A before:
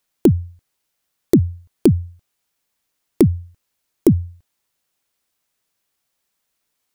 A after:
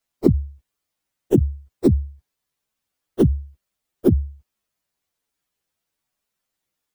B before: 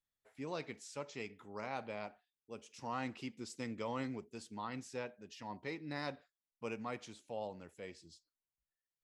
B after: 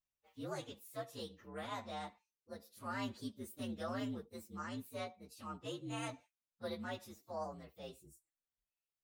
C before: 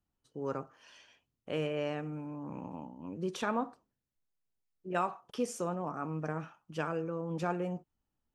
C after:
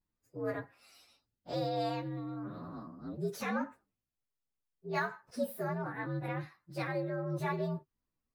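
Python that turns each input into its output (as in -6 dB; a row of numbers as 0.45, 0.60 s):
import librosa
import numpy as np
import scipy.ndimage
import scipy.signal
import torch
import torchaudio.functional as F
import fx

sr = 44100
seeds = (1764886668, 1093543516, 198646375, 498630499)

y = fx.partial_stretch(x, sr, pct=120)
y = y * 10.0 ** (1.5 / 20.0)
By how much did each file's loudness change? -3.0, -1.0, -0.5 LU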